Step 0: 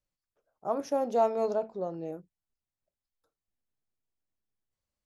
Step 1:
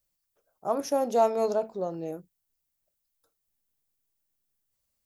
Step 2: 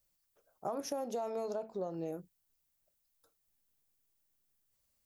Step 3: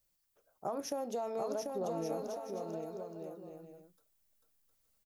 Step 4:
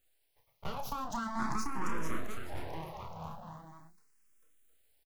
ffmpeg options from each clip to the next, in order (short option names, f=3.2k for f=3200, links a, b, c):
-af "aemphasis=mode=production:type=50kf,volume=2.5dB"
-af "alimiter=limit=-19dB:level=0:latency=1:release=17,acompressor=threshold=-36dB:ratio=6,volume=1dB"
-af "aecho=1:1:740|1184|1450|1610|1706:0.631|0.398|0.251|0.158|0.1"
-filter_complex "[0:a]aeval=exprs='abs(val(0))':c=same,asplit=2[a][b];[b]adelay=31,volume=-7.5dB[c];[a][c]amix=inputs=2:normalize=0,asplit=2[d][e];[e]afreqshift=0.42[f];[d][f]amix=inputs=2:normalize=1,volume=6dB"